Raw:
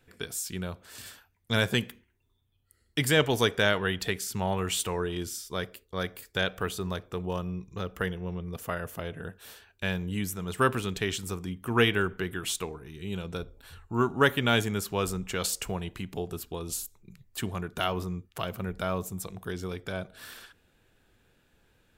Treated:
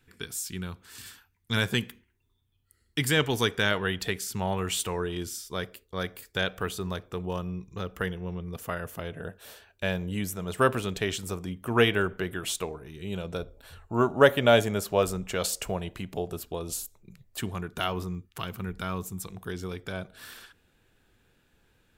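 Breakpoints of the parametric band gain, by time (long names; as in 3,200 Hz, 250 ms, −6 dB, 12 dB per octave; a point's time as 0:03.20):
parametric band 600 Hz 0.56 octaves
−13.5 dB
from 0:01.57 −7 dB
from 0:03.71 −0.5 dB
from 0:09.15 +8 dB
from 0:13.80 +14 dB
from 0:15.03 +8 dB
from 0:17.41 −2.5 dB
from 0:18.15 −10.5 dB
from 0:19.30 −2.5 dB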